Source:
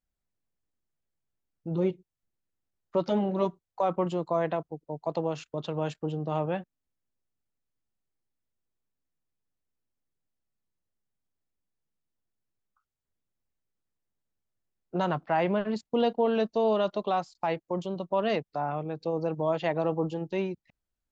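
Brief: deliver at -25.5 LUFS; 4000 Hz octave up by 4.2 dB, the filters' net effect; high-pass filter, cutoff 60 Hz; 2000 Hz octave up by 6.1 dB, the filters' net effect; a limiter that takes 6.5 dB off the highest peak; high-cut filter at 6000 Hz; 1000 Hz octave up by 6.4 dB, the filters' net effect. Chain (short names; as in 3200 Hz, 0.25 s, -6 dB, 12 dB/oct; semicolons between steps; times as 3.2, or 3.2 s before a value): HPF 60 Hz; LPF 6000 Hz; bell 1000 Hz +7.5 dB; bell 2000 Hz +4.5 dB; bell 4000 Hz +3.5 dB; gain +3.5 dB; limiter -13 dBFS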